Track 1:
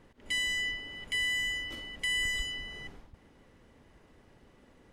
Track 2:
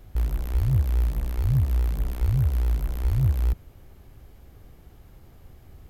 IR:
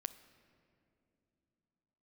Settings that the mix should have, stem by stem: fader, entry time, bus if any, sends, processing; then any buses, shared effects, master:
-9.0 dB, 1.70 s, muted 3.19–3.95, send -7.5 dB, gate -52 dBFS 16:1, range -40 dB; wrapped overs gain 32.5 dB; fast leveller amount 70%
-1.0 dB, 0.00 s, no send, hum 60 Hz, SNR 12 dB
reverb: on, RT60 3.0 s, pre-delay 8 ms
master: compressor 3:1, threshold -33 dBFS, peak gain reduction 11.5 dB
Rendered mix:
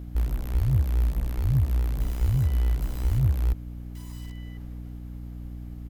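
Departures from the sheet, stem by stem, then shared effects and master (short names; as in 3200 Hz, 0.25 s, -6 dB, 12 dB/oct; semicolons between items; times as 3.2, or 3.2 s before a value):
stem 1 -9.0 dB -> -18.0 dB; master: missing compressor 3:1, threshold -33 dBFS, peak gain reduction 11.5 dB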